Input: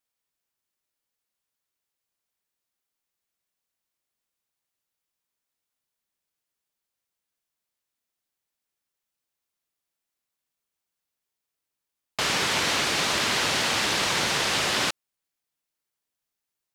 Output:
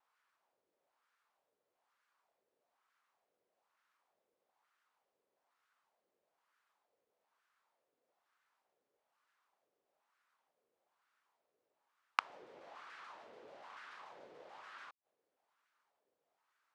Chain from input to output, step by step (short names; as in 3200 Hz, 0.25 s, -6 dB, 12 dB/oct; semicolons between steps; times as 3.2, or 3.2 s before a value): wah 1.1 Hz 460–1400 Hz, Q 2.9; flipped gate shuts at -35 dBFS, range -38 dB; shaped vibrato saw down 6.9 Hz, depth 160 cents; gain +18 dB